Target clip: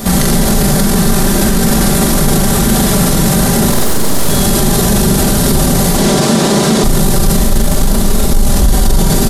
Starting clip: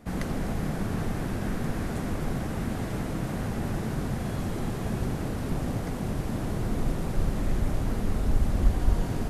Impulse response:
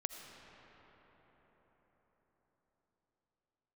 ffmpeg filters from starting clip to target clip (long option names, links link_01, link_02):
-filter_complex "[0:a]aecho=1:1:5.1:0.59,asettb=1/sr,asplit=3[link_01][link_02][link_03];[link_01]atrim=end=3.704[link_04];[link_02]atrim=start=3.7:end=4.29,asetpts=PTS-STARTPTS,afade=type=in:duration=0.004:curve=qsin,afade=type=out:start_time=0.586:duration=0.004:curve=qsin,aeval=exprs='abs(val(0))':channel_layout=same[link_05];[link_03]atrim=start=4.286[link_06];[link_04][link_05]acrossfade=duration=0.004:curve1=hsin:curve2=qsin[link_07];[link_07][link_06]acrossfade=duration=0.004:curve1=qsin:curve2=hsin,aexciter=amount=2.2:drive=8.6:freq=3400,asettb=1/sr,asplit=3[link_08][link_09][link_10];[link_08]atrim=end=5.944[link_11];[link_09]atrim=start=5.94:end=6.84,asetpts=PTS-STARTPTS,afade=type=in:duration=0.004:curve=qsin,afade=type=out:start_time=0.896:duration=0.004:curve=qsin,highpass=200,lowpass=7100[link_12];[link_10]atrim=start=6.836[link_13];[link_11][link_12]acrossfade=duration=0.004:curve1=hsin:curve2=qsin[link_14];[link_14][link_13]acrossfade=duration=0.004:curve1=qsin:curve2=hsin,asettb=1/sr,asplit=3[link_15][link_16][link_17];[link_15]atrim=end=7.414[link_18];[link_16]atrim=start=7.41:end=8.34,asetpts=PTS-STARTPTS,afade=type=in:duration=0.004:curve=qsin,afade=type=out:start_time=0.926:duration=0.004:curve=qsin,aeval=exprs='(tanh(6.31*val(0)+0.75)-tanh(0.75))/6.31':channel_layout=same[link_19];[link_17]atrim=start=8.336[link_20];[link_18][link_19]acrossfade=duration=0.004:curve1=hsin:curve2=qsin[link_21];[link_21][link_20]acrossfade=duration=0.004:curve1=qsin:curve2=hsin,aecho=1:1:40|86|138.9|199.7|269.7:0.631|0.398|0.251|0.158|0.1,alimiter=level_in=27.5dB:limit=-1dB:release=50:level=0:latency=1,volume=-1dB"